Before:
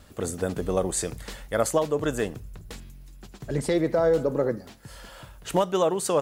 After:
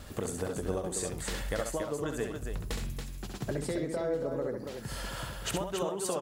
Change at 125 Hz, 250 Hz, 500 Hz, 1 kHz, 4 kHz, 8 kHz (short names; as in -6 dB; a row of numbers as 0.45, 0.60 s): -4.5, -7.0, -9.0, -9.0, -2.5, -5.0 dB